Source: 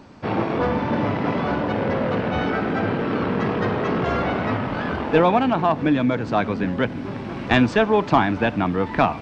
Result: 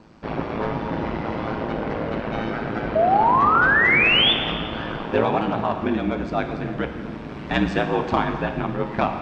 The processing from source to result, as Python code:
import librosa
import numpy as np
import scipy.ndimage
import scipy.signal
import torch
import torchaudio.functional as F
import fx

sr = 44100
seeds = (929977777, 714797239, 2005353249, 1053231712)

y = x * np.sin(2.0 * np.pi * 55.0 * np.arange(len(x)) / sr)
y = fx.spec_paint(y, sr, seeds[0], shape='rise', start_s=2.95, length_s=1.38, low_hz=620.0, high_hz=3600.0, level_db=-16.0)
y = fx.rev_plate(y, sr, seeds[1], rt60_s=1.8, hf_ratio=0.95, predelay_ms=0, drr_db=5.5)
y = y * 10.0 ** (-2.0 / 20.0)